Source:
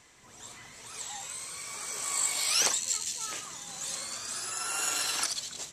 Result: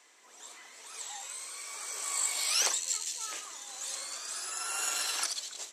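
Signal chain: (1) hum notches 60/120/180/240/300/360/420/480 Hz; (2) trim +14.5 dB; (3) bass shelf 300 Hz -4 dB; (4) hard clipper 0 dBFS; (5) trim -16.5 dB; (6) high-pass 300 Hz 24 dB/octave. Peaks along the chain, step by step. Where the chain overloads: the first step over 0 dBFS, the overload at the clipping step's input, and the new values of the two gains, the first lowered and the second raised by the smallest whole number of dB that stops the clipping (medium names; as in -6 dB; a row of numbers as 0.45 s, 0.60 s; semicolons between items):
-10.0 dBFS, +4.5 dBFS, +4.5 dBFS, 0.0 dBFS, -16.5 dBFS, -16.0 dBFS; step 2, 4.5 dB; step 2 +9.5 dB, step 5 -11.5 dB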